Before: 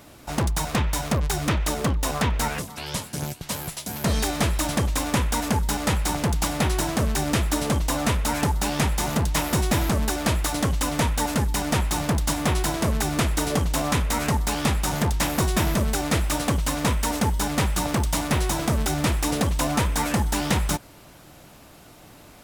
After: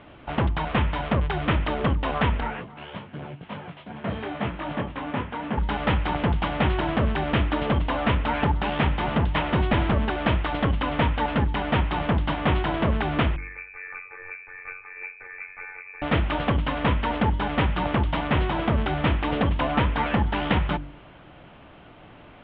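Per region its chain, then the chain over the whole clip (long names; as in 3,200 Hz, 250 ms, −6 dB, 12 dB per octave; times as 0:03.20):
0:02.40–0:05.58: high-pass filter 110 Hz + high-frequency loss of the air 240 metres + micro pitch shift up and down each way 30 cents
0:13.36–0:16.02: stiff-string resonator 150 Hz, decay 0.5 s, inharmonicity 0.03 + amplitude modulation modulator 92 Hz, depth 60% + voice inversion scrambler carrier 2,500 Hz
whole clip: elliptic low-pass filter 3,200 Hz, stop band 50 dB; hum removal 48.59 Hz, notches 7; level +2 dB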